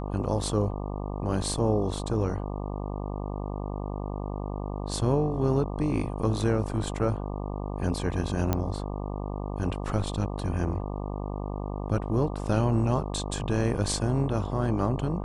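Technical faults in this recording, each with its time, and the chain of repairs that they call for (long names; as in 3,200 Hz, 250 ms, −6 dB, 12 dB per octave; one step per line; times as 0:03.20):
mains buzz 50 Hz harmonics 24 −33 dBFS
0:08.53: click −11 dBFS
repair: click removal
hum removal 50 Hz, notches 24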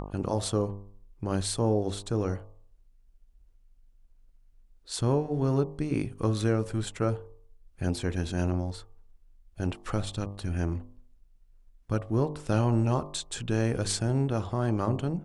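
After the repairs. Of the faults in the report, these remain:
none of them is left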